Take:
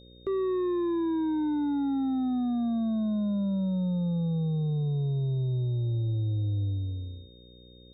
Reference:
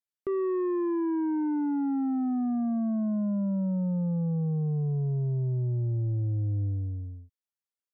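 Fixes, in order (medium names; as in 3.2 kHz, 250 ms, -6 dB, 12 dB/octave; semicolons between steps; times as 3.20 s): de-hum 60.5 Hz, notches 9; band-stop 3.7 kHz, Q 30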